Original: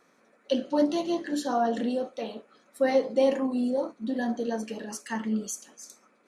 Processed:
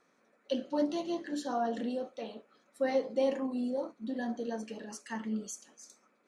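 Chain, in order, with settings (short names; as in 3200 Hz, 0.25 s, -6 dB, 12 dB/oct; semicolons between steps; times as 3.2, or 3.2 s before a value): LPF 9400 Hz 12 dB/oct; gain -6.5 dB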